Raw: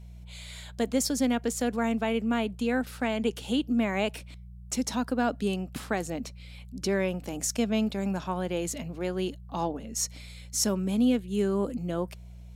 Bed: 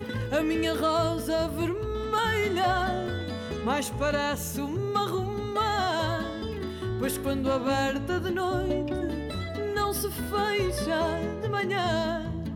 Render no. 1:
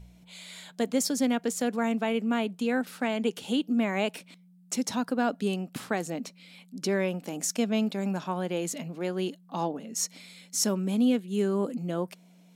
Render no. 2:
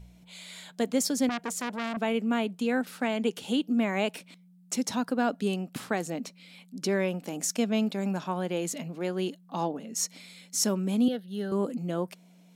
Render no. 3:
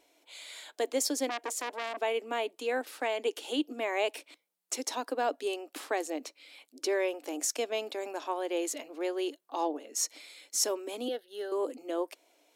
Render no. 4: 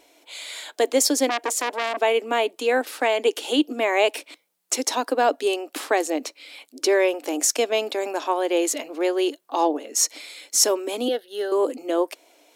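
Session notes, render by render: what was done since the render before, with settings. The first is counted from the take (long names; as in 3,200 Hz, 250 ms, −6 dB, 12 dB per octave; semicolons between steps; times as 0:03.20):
hum removal 60 Hz, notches 2
0:01.29–0:01.97: saturating transformer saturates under 1,900 Hz; 0:11.08–0:11.52: phaser with its sweep stopped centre 1,600 Hz, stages 8
dynamic equaliser 1,400 Hz, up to −6 dB, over −53 dBFS, Q 4.7; elliptic high-pass filter 300 Hz, stop band 40 dB
level +10.5 dB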